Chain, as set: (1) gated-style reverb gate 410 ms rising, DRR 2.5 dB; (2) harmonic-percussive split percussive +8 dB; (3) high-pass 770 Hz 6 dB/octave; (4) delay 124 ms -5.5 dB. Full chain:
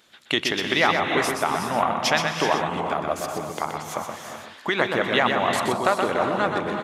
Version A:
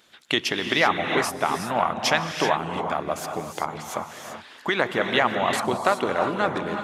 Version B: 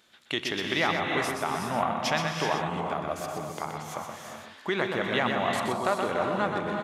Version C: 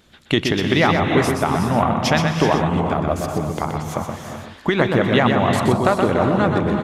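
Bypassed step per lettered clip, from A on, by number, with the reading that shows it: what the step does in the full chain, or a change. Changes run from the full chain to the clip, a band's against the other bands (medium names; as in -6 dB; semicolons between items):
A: 4, loudness change -1.0 LU; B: 2, 125 Hz band +3.5 dB; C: 3, 125 Hz band +13.0 dB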